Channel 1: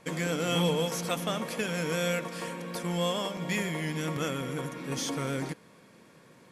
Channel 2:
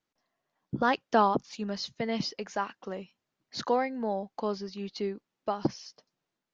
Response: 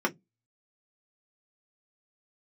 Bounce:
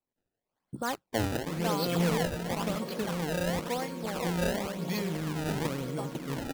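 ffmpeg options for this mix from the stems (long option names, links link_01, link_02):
-filter_complex "[0:a]acrossover=split=5000[link_01][link_02];[link_02]acompressor=threshold=-53dB:ratio=4:attack=1:release=60[link_03];[link_01][link_03]amix=inputs=2:normalize=0,equalizer=frequency=1700:width_type=o:width=1.8:gain=-9.5,adelay=1400,volume=0.5dB[link_04];[1:a]volume=-7dB,asplit=2[link_05][link_06];[link_06]volume=-3.5dB,aecho=0:1:499:1[link_07];[link_04][link_05][link_07]amix=inputs=3:normalize=0,equalizer=frequency=4200:width=7.2:gain=10.5,acrusher=samples=23:mix=1:aa=0.000001:lfo=1:lforange=36.8:lforate=0.96"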